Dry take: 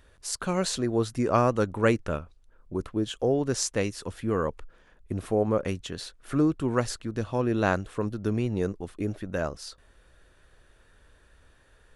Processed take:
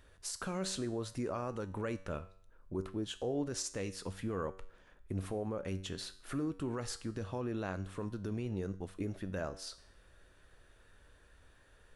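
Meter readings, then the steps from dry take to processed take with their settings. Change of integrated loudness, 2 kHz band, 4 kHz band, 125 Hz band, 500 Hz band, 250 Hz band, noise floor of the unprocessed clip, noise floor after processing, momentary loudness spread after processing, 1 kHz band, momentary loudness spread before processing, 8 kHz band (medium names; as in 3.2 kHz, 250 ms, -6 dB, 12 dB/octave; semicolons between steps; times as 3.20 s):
-11.0 dB, -12.5 dB, -7.5 dB, -10.0 dB, -12.5 dB, -10.5 dB, -60 dBFS, -64 dBFS, 6 LU, -13.5 dB, 10 LU, -8.5 dB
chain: in parallel at -1.5 dB: compression, threshold -36 dBFS, peak gain reduction 18 dB; on the sum: peak limiter -19 dBFS, peak gain reduction 11 dB; feedback comb 95 Hz, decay 0.58 s, harmonics all, mix 60%; trim -2.5 dB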